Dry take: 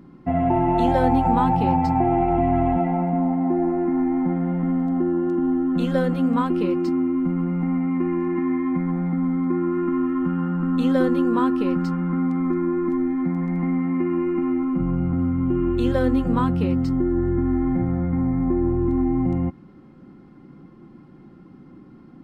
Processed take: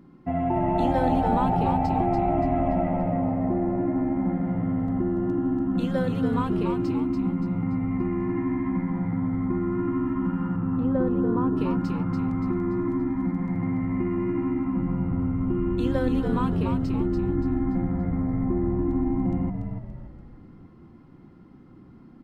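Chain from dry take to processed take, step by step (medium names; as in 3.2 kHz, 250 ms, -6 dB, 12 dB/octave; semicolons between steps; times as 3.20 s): 10.56–11.57 s: low-pass 1.1 kHz 12 dB/octave; frequency-shifting echo 287 ms, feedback 43%, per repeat -70 Hz, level -5 dB; trim -5 dB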